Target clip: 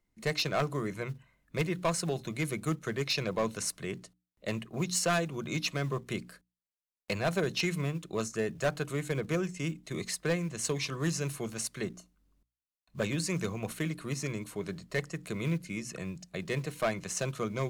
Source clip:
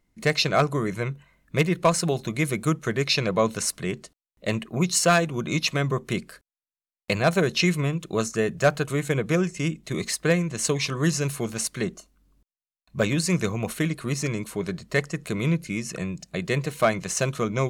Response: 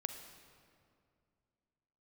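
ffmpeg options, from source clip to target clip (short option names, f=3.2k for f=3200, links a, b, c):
-filter_complex "[0:a]bandreject=f=60:t=h:w=6,bandreject=f=120:t=h:w=6,bandreject=f=180:t=h:w=6,bandreject=f=240:t=h:w=6,bandreject=f=300:t=h:w=6,volume=15.5dB,asoftclip=hard,volume=-15.5dB,acrossover=split=200|3300[a][b][c];[a]acrusher=bits=6:mode=log:mix=0:aa=0.000001[d];[d][b][c]amix=inputs=3:normalize=0,volume=-7.5dB"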